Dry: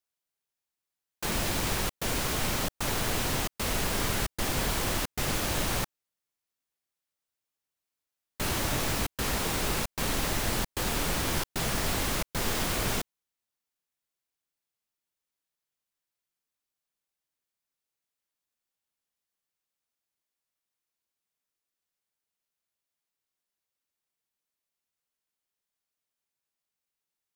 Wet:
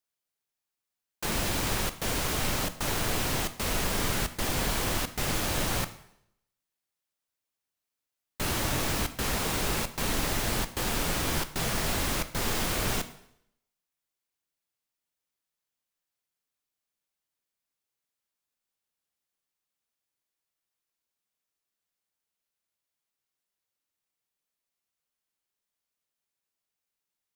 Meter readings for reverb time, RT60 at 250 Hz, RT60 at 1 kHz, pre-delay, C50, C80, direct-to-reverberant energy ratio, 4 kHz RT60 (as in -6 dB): 0.70 s, 0.75 s, 0.70 s, 6 ms, 13.5 dB, 16.5 dB, 10.5 dB, 0.70 s